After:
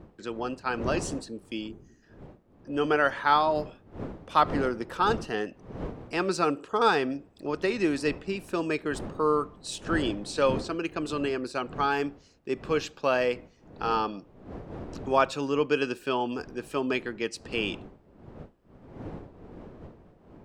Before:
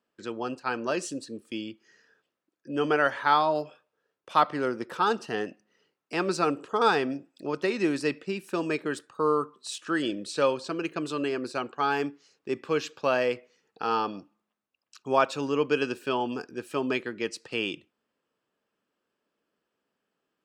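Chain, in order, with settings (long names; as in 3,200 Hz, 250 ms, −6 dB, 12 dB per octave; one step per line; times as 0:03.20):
wind on the microphone 380 Hz −42 dBFS
gain on a spectral selection 0:01.68–0:02.03, 440–5,800 Hz −11 dB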